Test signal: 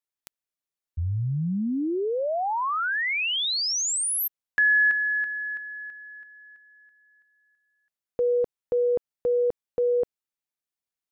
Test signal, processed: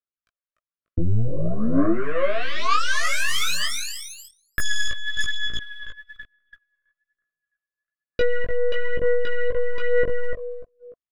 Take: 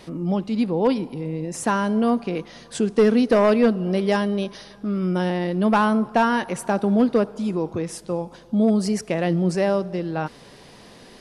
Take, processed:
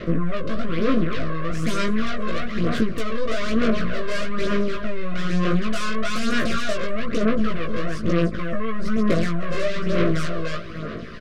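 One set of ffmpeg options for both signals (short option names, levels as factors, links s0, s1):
-filter_complex "[0:a]lowpass=2500,equalizer=f=1300:t=o:w=0.44:g=6,aecho=1:1:295|590|885:0.398|0.0955|0.0229,acompressor=threshold=0.0282:ratio=16:attack=87:release=76:knee=6:detection=peak,asoftclip=type=tanh:threshold=0.0891,aeval=exprs='0.0891*(cos(1*acos(clip(val(0)/0.0891,-1,1)))-cos(1*PI/2))+0.00562*(cos(3*acos(clip(val(0)/0.0891,-1,1)))-cos(3*PI/2))+0.00891*(cos(4*acos(clip(val(0)/0.0891,-1,1)))-cos(4*PI/2))+0.0178*(cos(5*acos(clip(val(0)/0.0891,-1,1)))-cos(5*PI/2))+0.0224*(cos(8*acos(clip(val(0)/0.0891,-1,1)))-cos(8*PI/2))':c=same,aphaser=in_gain=1:out_gain=1:delay=1.9:decay=0.59:speed=1.1:type=sinusoidal,asplit=2[s0][s1];[s1]adelay=18,volume=0.708[s2];[s0][s2]amix=inputs=2:normalize=0,agate=range=0.178:threshold=0.00447:ratio=16:release=44:detection=peak,asuperstop=centerf=850:order=12:qfactor=2.5"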